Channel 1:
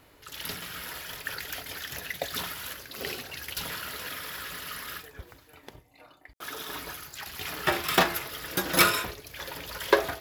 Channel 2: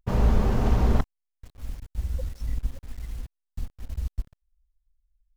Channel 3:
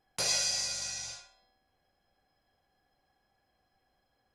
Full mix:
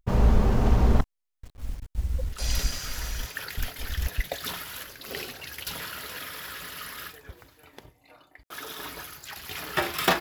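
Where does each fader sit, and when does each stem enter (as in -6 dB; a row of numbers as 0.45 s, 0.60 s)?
-0.5 dB, +1.0 dB, -5.5 dB; 2.10 s, 0.00 s, 2.20 s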